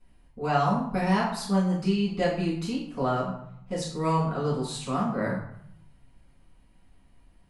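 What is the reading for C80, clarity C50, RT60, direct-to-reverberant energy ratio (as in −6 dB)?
7.5 dB, 4.0 dB, 0.70 s, −9.0 dB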